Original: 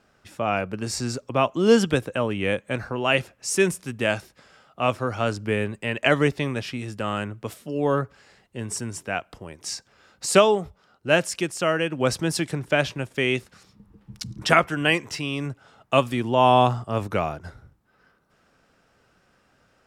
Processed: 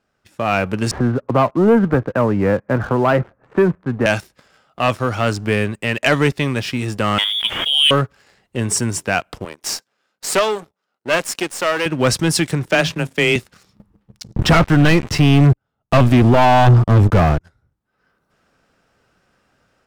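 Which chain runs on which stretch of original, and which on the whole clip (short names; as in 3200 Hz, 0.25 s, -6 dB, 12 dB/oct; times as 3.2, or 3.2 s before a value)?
0.91–4.06 inverse Chebyshev low-pass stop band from 4900 Hz, stop band 60 dB + three-band squash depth 40%
7.18–7.91 air absorption 170 m + inverted band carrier 3500 Hz + backwards sustainer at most 49 dB/s
9.45–11.86 half-wave gain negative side -12 dB + HPF 220 Hz + gate -58 dBFS, range -8 dB
12.68–13.36 notches 50/100/150/200/250 Hz + frequency shift +16 Hz
14.36–17.41 sample leveller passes 5 + tilt -3 dB/oct
whole clip: dynamic EQ 530 Hz, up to -3 dB, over -32 dBFS, Q 0.72; AGC gain up to 9 dB; sample leveller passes 2; gain -4.5 dB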